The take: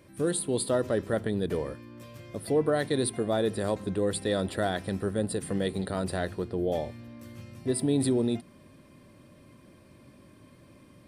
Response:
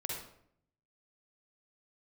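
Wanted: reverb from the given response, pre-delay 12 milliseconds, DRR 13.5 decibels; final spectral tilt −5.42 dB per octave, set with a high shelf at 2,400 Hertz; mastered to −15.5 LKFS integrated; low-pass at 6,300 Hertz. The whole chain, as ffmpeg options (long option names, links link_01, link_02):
-filter_complex "[0:a]lowpass=6300,highshelf=frequency=2400:gain=3,asplit=2[link_01][link_02];[1:a]atrim=start_sample=2205,adelay=12[link_03];[link_02][link_03]afir=irnorm=-1:irlink=0,volume=-15dB[link_04];[link_01][link_04]amix=inputs=2:normalize=0,volume=13.5dB"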